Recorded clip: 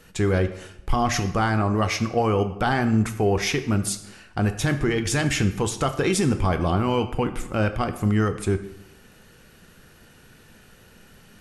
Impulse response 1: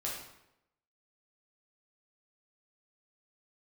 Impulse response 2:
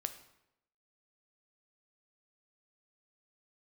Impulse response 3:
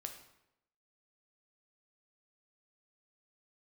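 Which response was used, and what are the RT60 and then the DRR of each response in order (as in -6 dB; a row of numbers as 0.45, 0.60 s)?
2; 0.85, 0.85, 0.85 s; -5.0, 8.5, 4.5 dB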